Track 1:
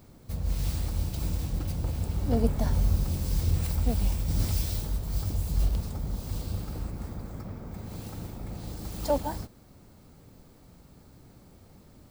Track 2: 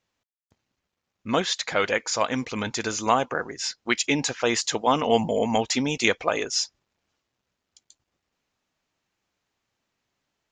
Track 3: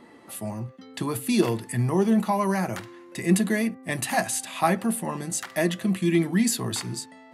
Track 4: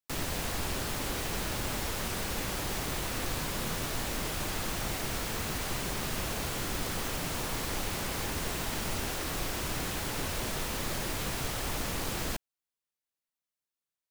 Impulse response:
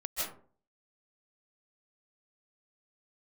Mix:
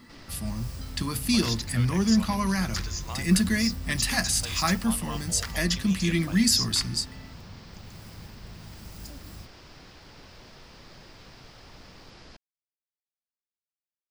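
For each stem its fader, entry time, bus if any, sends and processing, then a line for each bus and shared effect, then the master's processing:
-6.0 dB, 0.00 s, no send, compressor 2:1, threshold -27 dBFS, peak gain reduction 5.5 dB; Chebyshev band-stop 190–7600 Hz
-19.5 dB, 0.00 s, no send, tilt +3.5 dB/oct
0.0 dB, 0.00 s, no send, band shelf 550 Hz -10 dB
-15.0 dB, 0.00 s, no send, LPF 3900 Hz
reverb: off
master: bell 5000 Hz +11.5 dB 0.51 oct

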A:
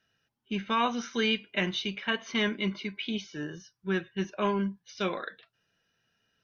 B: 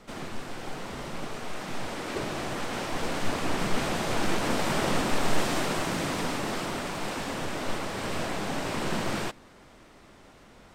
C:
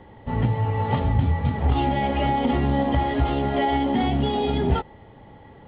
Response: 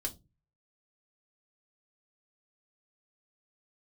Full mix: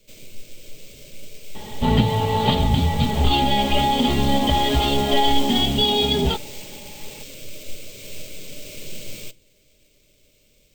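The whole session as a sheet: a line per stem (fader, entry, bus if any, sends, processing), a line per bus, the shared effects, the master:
off
-6.0 dB, 0.00 s, send -11.5 dB, Chebyshev band-stop 610–2200 Hz, order 5; bell 270 Hz -7.5 dB 1.6 oct; sample-and-hold 4×
+1.5 dB, 1.55 s, no send, resonant high shelf 2700 Hz +11 dB, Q 1.5; comb 4.8 ms, depth 48%; vocal rider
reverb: on, RT60 0.25 s, pre-delay 3 ms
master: high shelf 4800 Hz +10.5 dB

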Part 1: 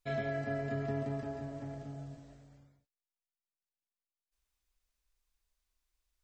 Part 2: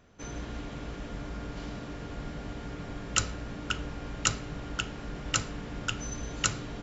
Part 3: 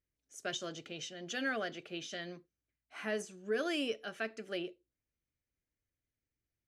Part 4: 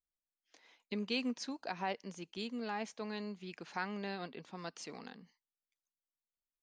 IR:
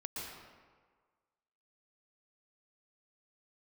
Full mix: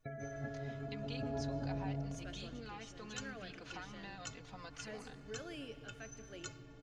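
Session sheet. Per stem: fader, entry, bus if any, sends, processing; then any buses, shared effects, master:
-3.5 dB, 0.00 s, send -7.5 dB, loudest bins only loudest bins 32; negative-ratio compressor -42 dBFS, ratio -1
-10.0 dB, 0.00 s, no send, metallic resonator 130 Hz, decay 0.22 s, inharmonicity 0.03
-15.5 dB, 1.80 s, send -9 dB, dry
-0.5 dB, 0.00 s, send -16 dB, low shelf 410 Hz -11 dB; comb 4 ms, depth 98%; compressor 3:1, threshold -51 dBFS, peak gain reduction 16.5 dB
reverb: on, RT60 1.6 s, pre-delay 0.111 s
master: low shelf 140 Hz +6.5 dB

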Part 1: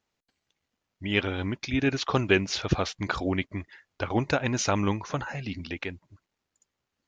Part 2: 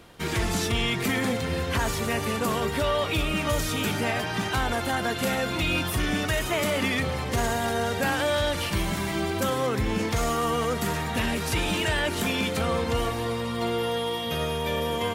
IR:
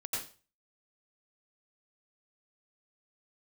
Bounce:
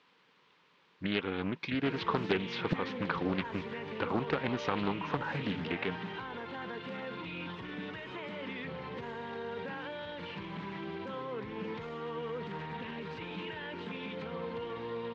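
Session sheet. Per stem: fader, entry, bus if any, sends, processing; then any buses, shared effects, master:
+0.5 dB, 0.00 s, no send, compressor 3:1, threshold -32 dBFS, peak gain reduction 12 dB
-10.0 dB, 1.65 s, no send, notch 1200 Hz, Q 10; limiter -22.5 dBFS, peak gain reduction 7.5 dB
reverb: off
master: requantised 10-bit, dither triangular; speaker cabinet 160–3500 Hz, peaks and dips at 170 Hz +8 dB, 460 Hz +6 dB, 680 Hz -9 dB, 1000 Hz +7 dB; Doppler distortion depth 0.74 ms

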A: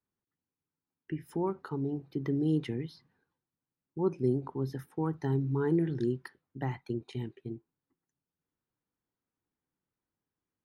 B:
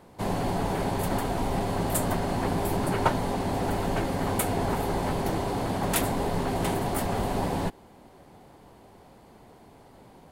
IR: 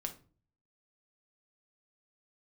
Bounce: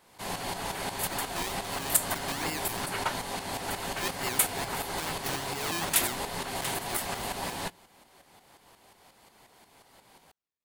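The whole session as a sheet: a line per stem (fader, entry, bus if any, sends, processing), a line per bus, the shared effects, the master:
-6.0 dB, 0.00 s, no send, decimation with a swept rate 25×, swing 60% 2.3 Hz
-2.0 dB, 0.00 s, send -19.5 dB, tremolo saw up 5.6 Hz, depth 60%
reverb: on, RT60 0.40 s, pre-delay 5 ms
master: tilt shelf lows -9.5 dB, about 940 Hz

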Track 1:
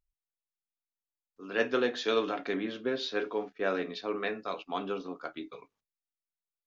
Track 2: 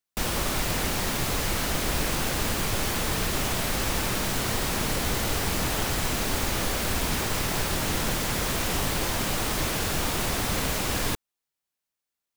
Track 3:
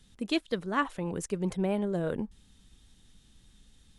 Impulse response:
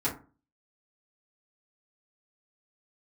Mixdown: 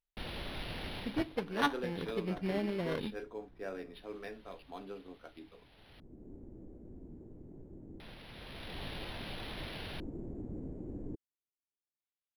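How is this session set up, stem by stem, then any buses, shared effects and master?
-10.5 dB, 0.00 s, no send, dry
1.02 s -13.5 dB -> 1.62 s -23 dB -> 8.25 s -23 dB -> 8.85 s -14.5 dB, 0.00 s, no send, LFO low-pass square 0.25 Hz 330–4100 Hz; auto duck -13 dB, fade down 0.40 s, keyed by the first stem
-5.5 dB, 0.85 s, send -22 dB, bell 1500 Hz +10.5 dB 0.51 oct; sample-and-hold 17×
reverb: on, RT60 0.35 s, pre-delay 4 ms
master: bell 1200 Hz -6.5 dB 0.58 oct; decimation joined by straight lines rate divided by 6×

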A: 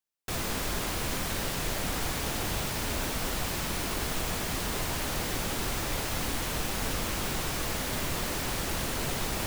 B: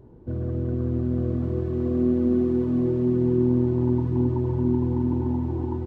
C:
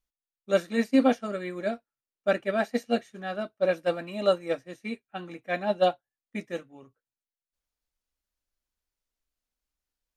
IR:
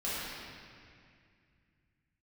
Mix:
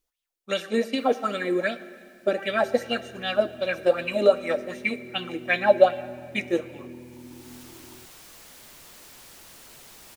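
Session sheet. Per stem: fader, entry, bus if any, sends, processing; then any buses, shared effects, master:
-15.0 dB, 0.70 s, no send, low shelf 180 Hz -9.5 dB; soft clip -33 dBFS, distortion -12 dB; auto duck -17 dB, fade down 1.40 s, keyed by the third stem
-19.5 dB, 2.20 s, no send, HPF 150 Hz 12 dB/oct
+0.5 dB, 0.00 s, send -21 dB, de-hum 389.5 Hz, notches 28; compressor 6:1, threshold -26 dBFS, peak gain reduction 10.5 dB; LFO bell 2.6 Hz 340–3400 Hz +16 dB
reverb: on, RT60 2.2 s, pre-delay 4 ms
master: high shelf 2900 Hz +7 dB

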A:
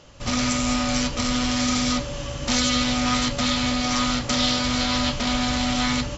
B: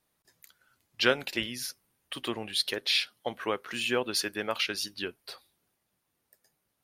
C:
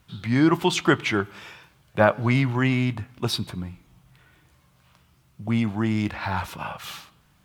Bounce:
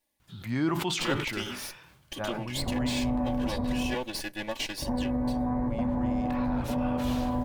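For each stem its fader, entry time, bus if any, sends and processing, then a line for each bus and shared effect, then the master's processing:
-2.0 dB, 2.40 s, muted 3.95–4.82, bus A, no send, inverse Chebyshev low-pass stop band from 2900 Hz, stop band 50 dB
-1.0 dB, 0.00 s, bus A, no send, minimum comb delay 3.5 ms; de-esser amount 55%
-5.5 dB, 0.20 s, no bus, no send, sustainer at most 36 dB/s; auto duck -12 dB, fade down 2.00 s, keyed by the second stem
bus A: 0.0 dB, Butterworth band-stop 1300 Hz, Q 3.3; limiter -21 dBFS, peak gain reduction 9.5 dB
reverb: off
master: dry

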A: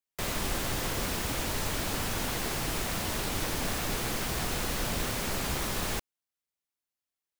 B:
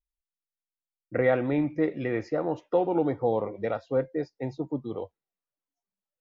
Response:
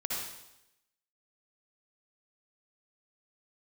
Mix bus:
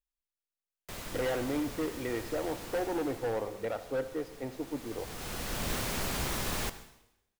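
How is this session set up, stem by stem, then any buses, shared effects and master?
2.77 s -6.5 dB -> 3.47 s -15.5 dB -> 4.49 s -15.5 dB -> 5.26 s -3 dB, 0.70 s, send -14.5 dB, auto duck -11 dB, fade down 1.85 s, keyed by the second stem
-5.5 dB, 0.00 s, send -14 dB, bell 160 Hz -14 dB 0.48 oct; hard clip -24 dBFS, distortion -10 dB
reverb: on, RT60 0.85 s, pre-delay 53 ms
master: dry

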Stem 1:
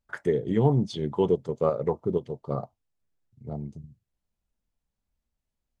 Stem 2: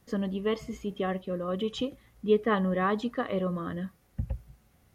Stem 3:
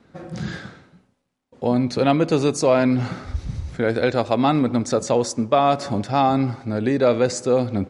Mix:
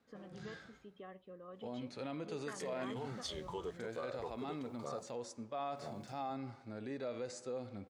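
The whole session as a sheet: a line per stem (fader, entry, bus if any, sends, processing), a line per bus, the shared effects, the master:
+3.0 dB, 2.35 s, bus A, no send, expander -45 dBFS; tilt +4 dB/oct; compressor 2:1, threshold -39 dBFS, peak gain reduction 10 dB
-14.5 dB, 0.00 s, no bus, no send, compressor 2.5:1, threshold -30 dBFS, peak gain reduction 8.5 dB; LPF 2200 Hz 6 dB/oct
-14.5 dB, 0.00 s, bus A, no send, dry
bus A: 0.0 dB, harmonic-percussive split percussive -9 dB; limiter -29.5 dBFS, peak gain reduction 9.5 dB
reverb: off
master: low shelf 300 Hz -10.5 dB

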